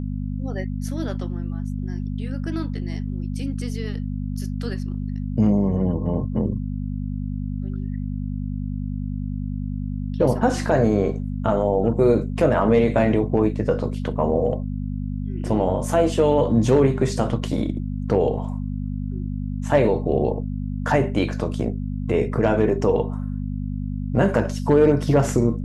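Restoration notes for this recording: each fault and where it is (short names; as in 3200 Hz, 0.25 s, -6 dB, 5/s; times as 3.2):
hum 50 Hz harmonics 5 -27 dBFS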